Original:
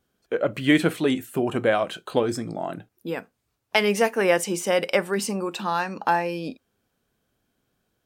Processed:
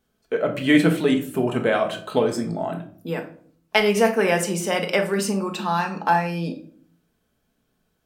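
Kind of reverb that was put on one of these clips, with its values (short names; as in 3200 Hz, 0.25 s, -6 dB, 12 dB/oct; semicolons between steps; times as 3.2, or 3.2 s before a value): shoebox room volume 560 m³, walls furnished, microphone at 1.5 m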